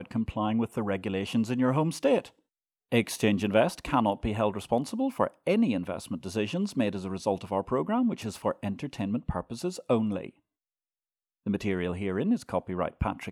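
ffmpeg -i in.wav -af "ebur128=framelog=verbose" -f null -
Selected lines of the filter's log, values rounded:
Integrated loudness:
  I:         -29.2 LUFS
  Threshold: -39.3 LUFS
Loudness range:
  LRA:         5.3 LU
  Threshold: -49.6 LUFS
  LRA low:   -32.8 LUFS
  LRA high:  -27.5 LUFS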